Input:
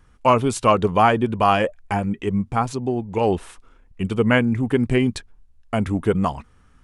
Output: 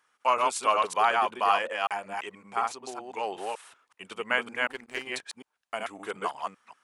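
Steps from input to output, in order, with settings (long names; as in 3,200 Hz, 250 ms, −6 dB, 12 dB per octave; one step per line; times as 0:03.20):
delay that plays each chunk backwards 187 ms, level −2 dB
high-pass filter 820 Hz 12 dB per octave
0:04.67–0:05.07: power curve on the samples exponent 1.4
level −5 dB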